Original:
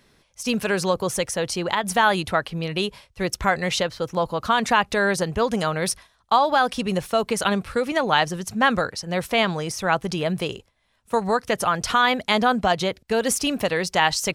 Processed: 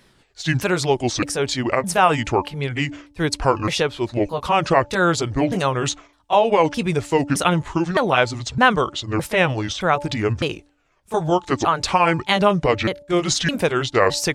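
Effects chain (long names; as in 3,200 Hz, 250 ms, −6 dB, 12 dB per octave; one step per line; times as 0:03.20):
pitch shifter swept by a sawtooth −9.5 semitones, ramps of 613 ms
hum removal 290.1 Hz, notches 3
level +4 dB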